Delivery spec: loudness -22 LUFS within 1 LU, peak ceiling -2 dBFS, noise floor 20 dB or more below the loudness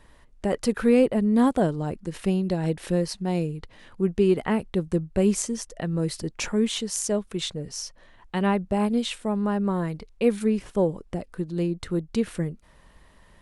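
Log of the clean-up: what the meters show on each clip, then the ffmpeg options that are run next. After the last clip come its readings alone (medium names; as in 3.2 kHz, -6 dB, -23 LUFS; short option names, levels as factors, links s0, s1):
loudness -26.0 LUFS; peak level -8.5 dBFS; loudness target -22.0 LUFS
-> -af "volume=1.58"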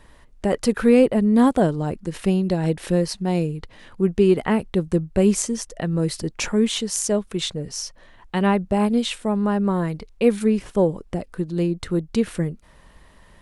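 loudness -22.0 LUFS; peak level -4.5 dBFS; noise floor -51 dBFS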